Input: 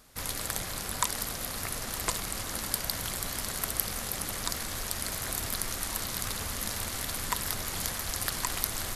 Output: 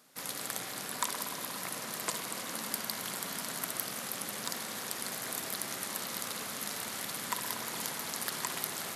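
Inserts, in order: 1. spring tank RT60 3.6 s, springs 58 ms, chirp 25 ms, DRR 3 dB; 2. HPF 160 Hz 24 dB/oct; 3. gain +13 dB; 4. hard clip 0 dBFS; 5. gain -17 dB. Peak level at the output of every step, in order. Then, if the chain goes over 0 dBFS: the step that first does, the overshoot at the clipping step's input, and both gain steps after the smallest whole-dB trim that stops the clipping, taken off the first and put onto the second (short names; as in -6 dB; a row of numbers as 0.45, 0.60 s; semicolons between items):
-5.5, -5.5, +7.5, 0.0, -17.0 dBFS; step 3, 7.5 dB; step 3 +5 dB, step 5 -9 dB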